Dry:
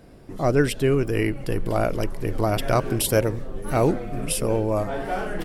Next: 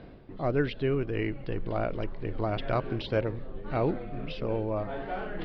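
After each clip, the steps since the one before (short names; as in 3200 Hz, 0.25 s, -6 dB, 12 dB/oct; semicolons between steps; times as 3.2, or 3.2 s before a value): reverse; upward compressor, threshold -25 dBFS; reverse; steep low-pass 4300 Hz 48 dB/oct; gain -7.5 dB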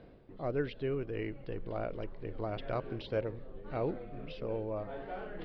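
bell 490 Hz +4.5 dB 0.61 oct; gain -8.5 dB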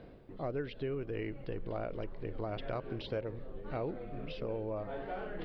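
compressor 3:1, threshold -37 dBFS, peak gain reduction 7.5 dB; gain +2.5 dB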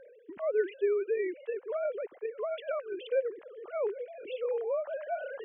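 sine-wave speech; gain +5 dB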